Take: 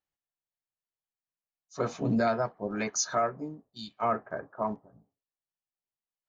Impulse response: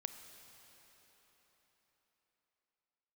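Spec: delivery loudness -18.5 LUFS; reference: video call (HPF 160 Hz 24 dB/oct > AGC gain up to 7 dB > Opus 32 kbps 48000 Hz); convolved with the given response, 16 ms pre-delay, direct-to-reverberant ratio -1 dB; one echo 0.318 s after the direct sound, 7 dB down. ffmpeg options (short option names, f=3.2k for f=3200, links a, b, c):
-filter_complex "[0:a]aecho=1:1:318:0.447,asplit=2[a][b];[1:a]atrim=start_sample=2205,adelay=16[c];[b][c]afir=irnorm=-1:irlink=0,volume=3.5dB[d];[a][d]amix=inputs=2:normalize=0,highpass=f=160:w=0.5412,highpass=f=160:w=1.3066,dynaudnorm=m=7dB,volume=10dB" -ar 48000 -c:a libopus -b:a 32k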